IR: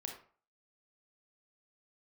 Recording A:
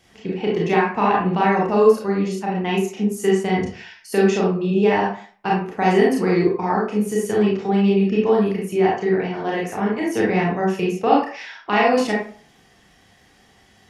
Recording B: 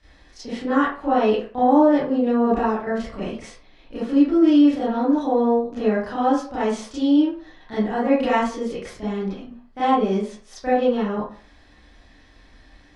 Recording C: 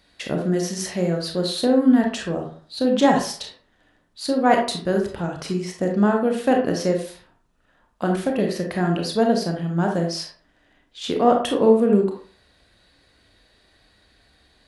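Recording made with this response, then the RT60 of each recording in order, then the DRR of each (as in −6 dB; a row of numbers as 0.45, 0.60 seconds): C; 0.45, 0.45, 0.45 seconds; −4.5, −12.0, 1.5 decibels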